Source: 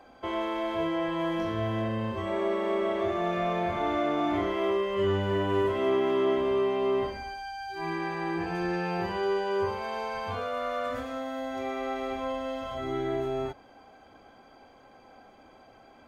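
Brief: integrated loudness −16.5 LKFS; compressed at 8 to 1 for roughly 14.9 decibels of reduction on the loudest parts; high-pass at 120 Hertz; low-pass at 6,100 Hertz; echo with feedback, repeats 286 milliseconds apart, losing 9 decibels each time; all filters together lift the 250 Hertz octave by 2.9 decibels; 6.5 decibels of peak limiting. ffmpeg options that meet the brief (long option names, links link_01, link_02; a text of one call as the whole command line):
ffmpeg -i in.wav -af "highpass=120,lowpass=6100,equalizer=frequency=250:width_type=o:gain=4.5,acompressor=threshold=-37dB:ratio=8,alimiter=level_in=9dB:limit=-24dB:level=0:latency=1,volume=-9dB,aecho=1:1:286|572|858|1144:0.355|0.124|0.0435|0.0152,volume=23.5dB" out.wav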